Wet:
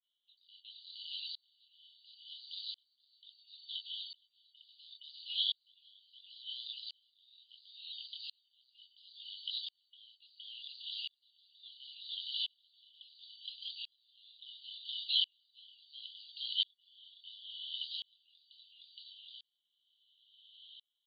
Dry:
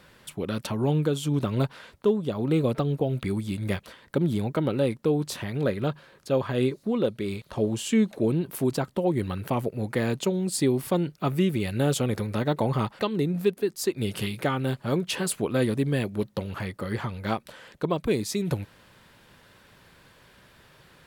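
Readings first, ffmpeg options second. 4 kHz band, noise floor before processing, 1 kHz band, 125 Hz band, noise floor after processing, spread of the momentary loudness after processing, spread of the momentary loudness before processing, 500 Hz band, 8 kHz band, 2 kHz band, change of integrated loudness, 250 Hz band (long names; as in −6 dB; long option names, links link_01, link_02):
+2.0 dB, −57 dBFS, below −40 dB, below −40 dB, −82 dBFS, 24 LU, 7 LU, below −40 dB, below −40 dB, −24.0 dB, −13.0 dB, below −40 dB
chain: -filter_complex "[0:a]afftfilt=real='real(if(lt(b,272),68*(eq(floor(b/68),0)*3+eq(floor(b/68),1)*2+eq(floor(b/68),2)*1+eq(floor(b/68),3)*0)+mod(b,68),b),0)':imag='imag(if(lt(b,272),68*(eq(floor(b/68),0)*3+eq(floor(b/68),1)*2+eq(floor(b/68),2)*1+eq(floor(b/68),3)*0)+mod(b,68),b),0)':win_size=2048:overlap=0.75,flanger=delay=19:depth=6.6:speed=0.31,asplit=2[link_01][link_02];[link_02]acompressor=threshold=-39dB:ratio=20,volume=1.5dB[link_03];[link_01][link_03]amix=inputs=2:normalize=0,asoftclip=type=tanh:threshold=-30dB,agate=range=-33dB:threshold=-43dB:ratio=3:detection=peak,asuperpass=centerf=3400:order=12:qfactor=2.9,aecho=1:1:467|934|1401|1868:0.631|0.164|0.0427|0.0111,aeval=exprs='val(0)*pow(10,-39*if(lt(mod(-0.72*n/s,1),2*abs(-0.72)/1000),1-mod(-0.72*n/s,1)/(2*abs(-0.72)/1000),(mod(-0.72*n/s,1)-2*abs(-0.72)/1000)/(1-2*abs(-0.72)/1000))/20)':channel_layout=same,volume=14.5dB"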